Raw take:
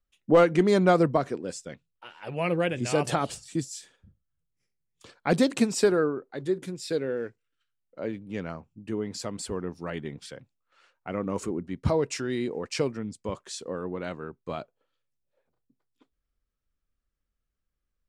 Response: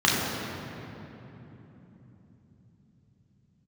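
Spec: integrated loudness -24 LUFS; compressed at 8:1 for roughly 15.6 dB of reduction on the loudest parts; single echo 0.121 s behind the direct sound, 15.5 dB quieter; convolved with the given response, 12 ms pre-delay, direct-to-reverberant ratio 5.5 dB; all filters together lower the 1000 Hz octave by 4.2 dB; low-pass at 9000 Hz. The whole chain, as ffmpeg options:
-filter_complex "[0:a]lowpass=9k,equalizer=f=1k:t=o:g=-6.5,acompressor=threshold=-33dB:ratio=8,aecho=1:1:121:0.168,asplit=2[a][b];[1:a]atrim=start_sample=2205,adelay=12[c];[b][c]afir=irnorm=-1:irlink=0,volume=-24dB[d];[a][d]amix=inputs=2:normalize=0,volume=13dB"

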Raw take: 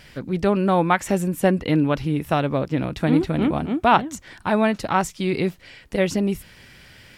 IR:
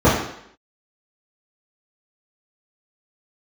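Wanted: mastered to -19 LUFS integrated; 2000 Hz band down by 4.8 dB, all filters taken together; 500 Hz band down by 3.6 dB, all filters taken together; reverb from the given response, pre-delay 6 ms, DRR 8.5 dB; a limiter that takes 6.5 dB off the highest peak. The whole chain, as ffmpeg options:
-filter_complex "[0:a]equalizer=f=500:t=o:g=-4.5,equalizer=f=2k:t=o:g=-6.5,alimiter=limit=-13dB:level=0:latency=1,asplit=2[a][b];[1:a]atrim=start_sample=2205,adelay=6[c];[b][c]afir=irnorm=-1:irlink=0,volume=-34dB[d];[a][d]amix=inputs=2:normalize=0,volume=3.5dB"

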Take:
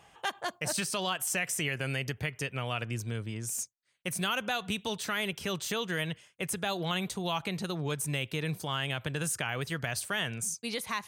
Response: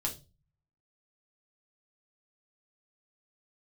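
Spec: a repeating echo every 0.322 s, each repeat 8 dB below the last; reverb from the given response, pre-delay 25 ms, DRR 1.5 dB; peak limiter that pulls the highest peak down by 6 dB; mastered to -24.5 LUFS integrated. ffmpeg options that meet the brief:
-filter_complex "[0:a]alimiter=limit=-22.5dB:level=0:latency=1,aecho=1:1:322|644|966|1288|1610:0.398|0.159|0.0637|0.0255|0.0102,asplit=2[a][b];[1:a]atrim=start_sample=2205,adelay=25[c];[b][c]afir=irnorm=-1:irlink=0,volume=-4.5dB[d];[a][d]amix=inputs=2:normalize=0,volume=6.5dB"

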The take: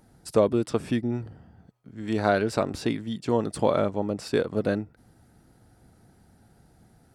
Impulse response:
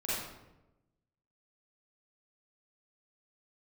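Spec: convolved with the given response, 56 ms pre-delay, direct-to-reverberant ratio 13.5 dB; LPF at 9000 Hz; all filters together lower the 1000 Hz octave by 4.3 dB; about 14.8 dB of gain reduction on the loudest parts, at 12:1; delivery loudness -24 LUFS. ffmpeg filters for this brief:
-filter_complex "[0:a]lowpass=9k,equalizer=f=1k:t=o:g=-6.5,acompressor=threshold=-33dB:ratio=12,asplit=2[a][b];[1:a]atrim=start_sample=2205,adelay=56[c];[b][c]afir=irnorm=-1:irlink=0,volume=-19dB[d];[a][d]amix=inputs=2:normalize=0,volume=15.5dB"

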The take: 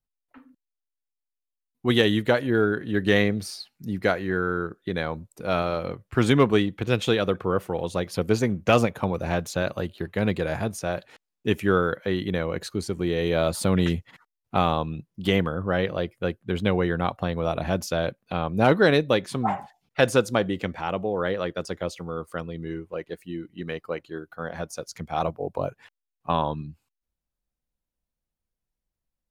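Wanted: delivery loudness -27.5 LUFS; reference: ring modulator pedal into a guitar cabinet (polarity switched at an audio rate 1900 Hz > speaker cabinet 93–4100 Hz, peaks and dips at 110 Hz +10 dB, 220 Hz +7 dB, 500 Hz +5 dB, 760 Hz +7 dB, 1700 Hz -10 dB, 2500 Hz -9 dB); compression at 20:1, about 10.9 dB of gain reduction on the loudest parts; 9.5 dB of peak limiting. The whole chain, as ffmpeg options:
-af "acompressor=threshold=-24dB:ratio=20,alimiter=limit=-19.5dB:level=0:latency=1,aeval=exprs='val(0)*sgn(sin(2*PI*1900*n/s))':c=same,highpass=93,equalizer=f=110:t=q:w=4:g=10,equalizer=f=220:t=q:w=4:g=7,equalizer=f=500:t=q:w=4:g=5,equalizer=f=760:t=q:w=4:g=7,equalizer=f=1.7k:t=q:w=4:g=-10,equalizer=f=2.5k:t=q:w=4:g=-9,lowpass=f=4.1k:w=0.5412,lowpass=f=4.1k:w=1.3066,volume=9.5dB"

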